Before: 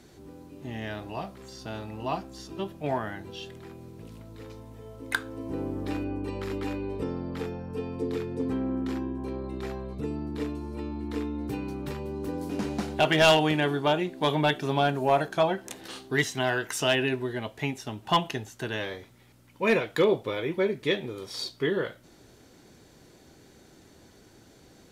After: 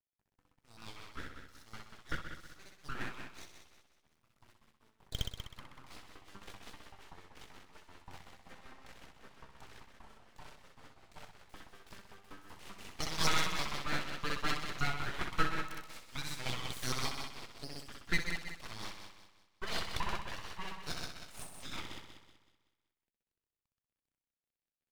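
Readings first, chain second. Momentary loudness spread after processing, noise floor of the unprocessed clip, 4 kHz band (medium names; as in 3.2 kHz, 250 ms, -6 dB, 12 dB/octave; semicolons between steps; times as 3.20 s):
21 LU, -56 dBFS, -8.5 dB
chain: LFO high-pass saw up 5.2 Hz 550–2400 Hz; crossover distortion -48.5 dBFS; flutter echo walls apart 10.8 m, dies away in 1.3 s; rotary cabinet horn 5.5 Hz; full-wave rectifier; trim -8.5 dB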